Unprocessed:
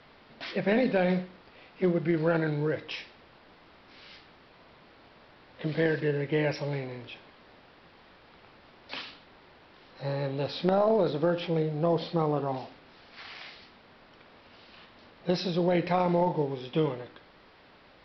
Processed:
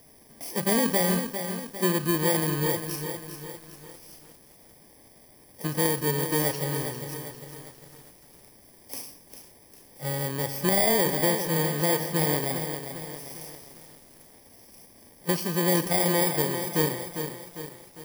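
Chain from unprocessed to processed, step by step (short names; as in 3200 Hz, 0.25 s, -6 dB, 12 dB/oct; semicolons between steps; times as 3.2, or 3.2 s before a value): FFT order left unsorted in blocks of 32 samples; lo-fi delay 0.401 s, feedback 55%, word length 8-bit, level -8 dB; gain +1.5 dB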